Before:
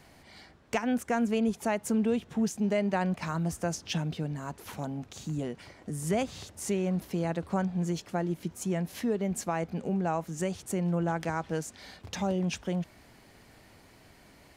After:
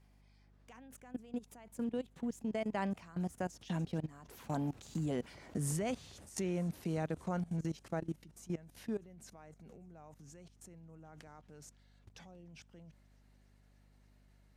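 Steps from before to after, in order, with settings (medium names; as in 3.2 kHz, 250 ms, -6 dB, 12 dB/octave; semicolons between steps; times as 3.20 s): Doppler pass-by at 5.49 s, 22 m/s, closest 18 m; feedback echo behind a high-pass 294 ms, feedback 77%, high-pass 5 kHz, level -23 dB; level held to a coarse grid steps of 20 dB; hum 50 Hz, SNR 24 dB; trim +5 dB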